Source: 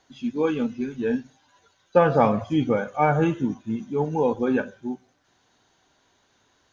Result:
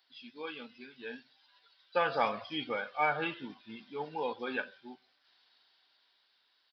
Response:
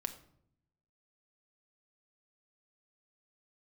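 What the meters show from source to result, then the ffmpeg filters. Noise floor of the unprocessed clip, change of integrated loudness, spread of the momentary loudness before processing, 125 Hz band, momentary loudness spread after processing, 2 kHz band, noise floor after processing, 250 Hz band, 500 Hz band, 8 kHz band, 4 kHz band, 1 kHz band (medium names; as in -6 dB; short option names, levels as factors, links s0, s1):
-66 dBFS, -11.5 dB, 11 LU, -24.0 dB, 19 LU, -3.0 dB, -73 dBFS, -20.0 dB, -14.0 dB, no reading, +1.5 dB, -8.5 dB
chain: -af "aresample=11025,aresample=44100,aderivative,dynaudnorm=f=290:g=11:m=2,volume=1.5"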